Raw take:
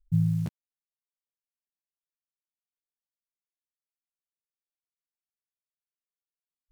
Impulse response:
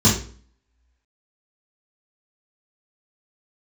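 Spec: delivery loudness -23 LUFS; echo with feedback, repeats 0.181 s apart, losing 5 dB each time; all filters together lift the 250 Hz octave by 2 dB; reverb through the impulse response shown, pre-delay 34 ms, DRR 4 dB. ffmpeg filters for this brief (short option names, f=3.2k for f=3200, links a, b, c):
-filter_complex "[0:a]equalizer=f=250:t=o:g=5,aecho=1:1:181|362|543|724|905|1086|1267:0.562|0.315|0.176|0.0988|0.0553|0.031|0.0173,asplit=2[a][b];[1:a]atrim=start_sample=2205,adelay=34[c];[b][c]afir=irnorm=-1:irlink=0,volume=-23dB[d];[a][d]amix=inputs=2:normalize=0,volume=-7dB"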